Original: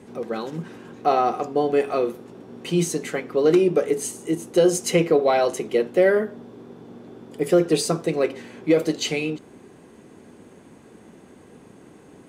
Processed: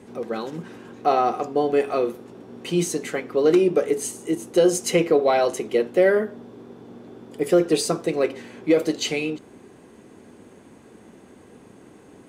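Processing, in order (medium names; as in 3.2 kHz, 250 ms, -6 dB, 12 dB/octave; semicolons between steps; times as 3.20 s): peaking EQ 160 Hz -5.5 dB 0.2 oct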